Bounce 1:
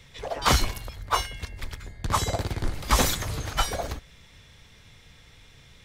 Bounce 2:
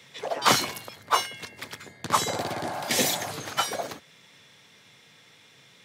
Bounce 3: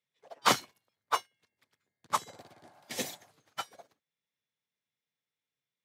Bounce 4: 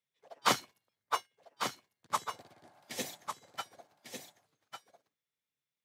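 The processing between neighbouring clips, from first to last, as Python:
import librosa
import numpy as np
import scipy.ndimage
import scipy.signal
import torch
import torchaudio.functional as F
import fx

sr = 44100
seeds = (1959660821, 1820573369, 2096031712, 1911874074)

y1 = fx.spec_repair(x, sr, seeds[0], start_s=2.33, length_s=0.96, low_hz=560.0, high_hz=1700.0, source='before')
y1 = scipy.signal.sosfilt(scipy.signal.bessel(8, 210.0, 'highpass', norm='mag', fs=sr, output='sos'), y1)
y1 = fx.rider(y1, sr, range_db=5, speed_s=2.0)
y2 = fx.upward_expand(y1, sr, threshold_db=-40.0, expansion=2.5)
y2 = y2 * 10.0 ** (-3.5 / 20.0)
y3 = y2 + 10.0 ** (-7.5 / 20.0) * np.pad(y2, (int(1149 * sr / 1000.0), 0))[:len(y2)]
y3 = y3 * 10.0 ** (-3.0 / 20.0)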